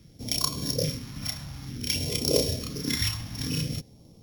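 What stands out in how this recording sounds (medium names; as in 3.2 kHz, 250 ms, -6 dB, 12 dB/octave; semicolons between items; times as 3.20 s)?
a buzz of ramps at a fixed pitch in blocks of 8 samples; phasing stages 2, 0.55 Hz, lowest notch 410–1500 Hz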